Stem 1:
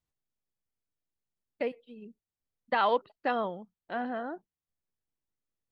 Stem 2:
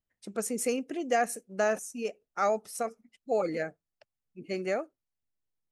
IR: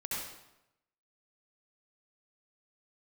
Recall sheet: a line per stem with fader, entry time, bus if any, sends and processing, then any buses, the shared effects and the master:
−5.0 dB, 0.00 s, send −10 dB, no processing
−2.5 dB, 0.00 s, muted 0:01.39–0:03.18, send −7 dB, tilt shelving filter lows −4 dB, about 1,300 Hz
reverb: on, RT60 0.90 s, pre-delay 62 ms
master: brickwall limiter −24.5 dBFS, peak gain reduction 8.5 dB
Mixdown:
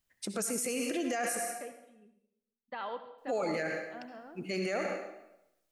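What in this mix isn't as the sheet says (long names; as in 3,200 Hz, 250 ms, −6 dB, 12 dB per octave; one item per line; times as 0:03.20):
stem 1 −5.0 dB → −15.0 dB
stem 2 −2.5 dB → +6.0 dB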